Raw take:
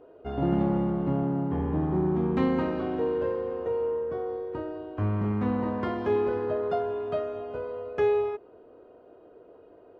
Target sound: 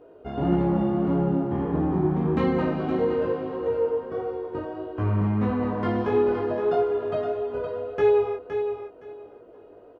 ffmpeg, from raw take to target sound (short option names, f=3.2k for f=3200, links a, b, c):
-af "flanger=delay=16.5:depth=4:speed=1.6,aecho=1:1:516|1032|1548:0.398|0.0756|0.0144,volume=5.5dB"